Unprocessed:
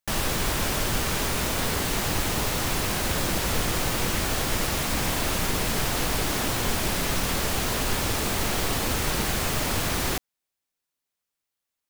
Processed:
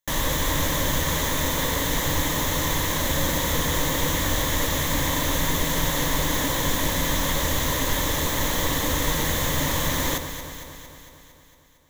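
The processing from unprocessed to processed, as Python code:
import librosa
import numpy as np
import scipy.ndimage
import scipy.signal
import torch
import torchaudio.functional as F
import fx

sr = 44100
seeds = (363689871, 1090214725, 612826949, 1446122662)

y = fx.ripple_eq(x, sr, per_octave=1.1, db=10)
y = fx.echo_alternate(y, sr, ms=114, hz=1400.0, feedback_pct=79, wet_db=-8.0)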